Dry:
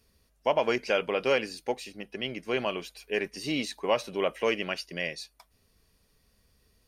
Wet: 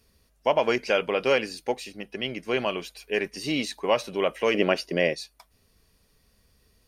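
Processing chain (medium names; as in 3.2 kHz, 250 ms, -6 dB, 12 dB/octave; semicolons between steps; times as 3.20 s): 4.54–5.14 s: peaking EQ 420 Hz +11.5 dB 2.7 oct; trim +3 dB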